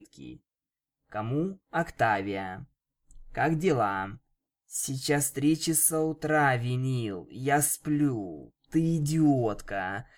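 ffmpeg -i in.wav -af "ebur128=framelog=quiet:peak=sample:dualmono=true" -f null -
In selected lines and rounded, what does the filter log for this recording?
Integrated loudness:
  I:         -24.7 LUFS
  Threshold: -35.4 LUFS
Loudness range:
  LRA:         5.1 LU
  Threshold: -45.4 LUFS
  LRA low:   -28.7 LUFS
  LRA high:  -23.5 LUFS
Sample peak:
  Peak:      -11.2 dBFS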